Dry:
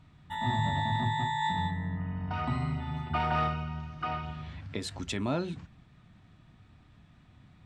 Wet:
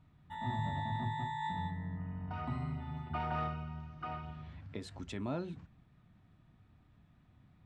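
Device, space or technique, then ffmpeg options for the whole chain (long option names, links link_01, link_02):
behind a face mask: -af "highshelf=frequency=2200:gain=-8,volume=-6.5dB"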